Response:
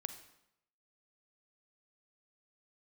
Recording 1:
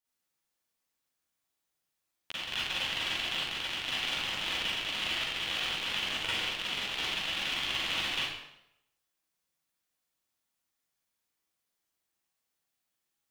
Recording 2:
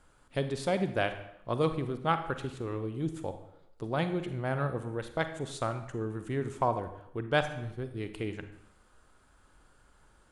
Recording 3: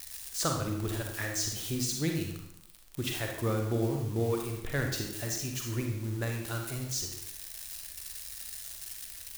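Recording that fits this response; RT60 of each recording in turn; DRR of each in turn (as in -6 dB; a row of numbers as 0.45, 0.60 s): 2; 0.80, 0.80, 0.80 s; -8.5, 9.0, 1.5 dB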